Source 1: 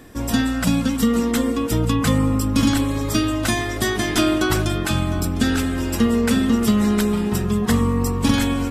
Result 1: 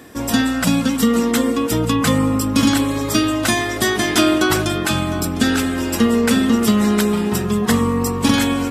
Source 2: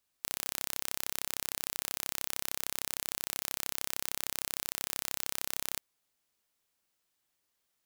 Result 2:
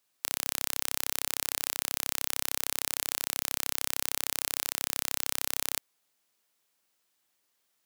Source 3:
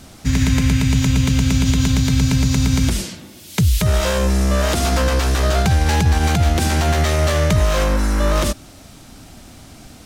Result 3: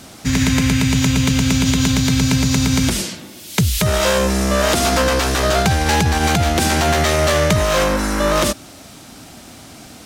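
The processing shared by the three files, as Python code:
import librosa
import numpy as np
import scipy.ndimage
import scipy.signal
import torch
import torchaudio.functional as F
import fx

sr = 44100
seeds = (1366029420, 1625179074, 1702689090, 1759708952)

y = fx.highpass(x, sr, hz=190.0, slope=6)
y = F.gain(torch.from_numpy(y), 4.5).numpy()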